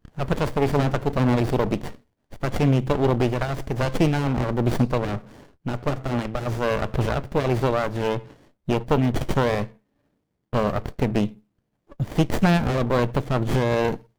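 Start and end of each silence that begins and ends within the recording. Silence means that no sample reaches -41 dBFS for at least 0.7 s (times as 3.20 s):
9.72–10.53 s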